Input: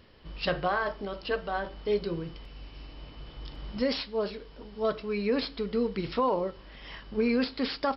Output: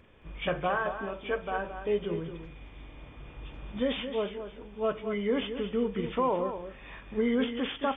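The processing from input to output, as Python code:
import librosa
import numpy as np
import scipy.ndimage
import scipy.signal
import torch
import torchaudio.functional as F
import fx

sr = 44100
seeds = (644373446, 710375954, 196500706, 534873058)

p1 = fx.freq_compress(x, sr, knee_hz=1600.0, ratio=1.5)
p2 = p1 + fx.echo_single(p1, sr, ms=220, db=-9.5, dry=0)
y = F.gain(torch.from_numpy(p2), -1.0).numpy()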